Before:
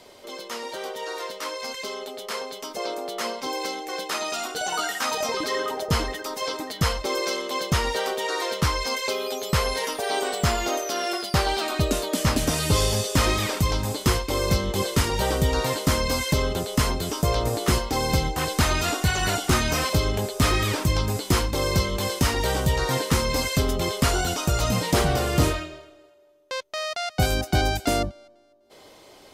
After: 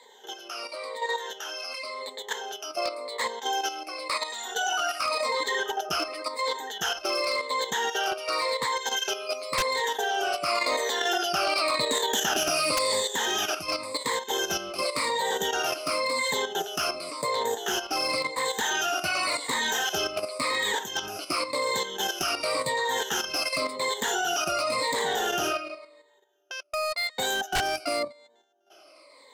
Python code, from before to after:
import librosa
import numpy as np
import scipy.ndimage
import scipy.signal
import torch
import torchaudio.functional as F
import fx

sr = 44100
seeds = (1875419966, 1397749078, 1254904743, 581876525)

y = fx.spec_ripple(x, sr, per_octave=1.0, drift_hz=-0.92, depth_db=20)
y = scipy.signal.sosfilt(scipy.signal.butter(2, 520.0, 'highpass', fs=sr, output='sos'), y)
y = fx.high_shelf(y, sr, hz=11000.0, db=-12.0)
y = fx.level_steps(y, sr, step_db=9)
y = 10.0 ** (-19.0 / 20.0) * (np.abs((y / 10.0 ** (-19.0 / 20.0) + 3.0) % 4.0 - 2.0) - 1.0)
y = fx.env_flatten(y, sr, amount_pct=70, at=(10.48, 13.0))